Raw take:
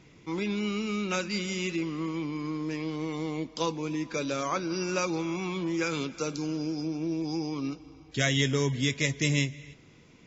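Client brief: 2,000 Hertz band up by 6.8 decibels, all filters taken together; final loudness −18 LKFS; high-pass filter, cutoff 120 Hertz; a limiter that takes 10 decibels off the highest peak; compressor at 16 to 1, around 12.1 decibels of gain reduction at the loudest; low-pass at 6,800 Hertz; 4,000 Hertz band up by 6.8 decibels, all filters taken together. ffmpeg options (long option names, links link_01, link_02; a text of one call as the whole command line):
ffmpeg -i in.wav -af "highpass=120,lowpass=6800,equalizer=frequency=2000:width_type=o:gain=6,equalizer=frequency=4000:width_type=o:gain=7,acompressor=threshold=-29dB:ratio=16,volume=18dB,alimiter=limit=-9dB:level=0:latency=1" out.wav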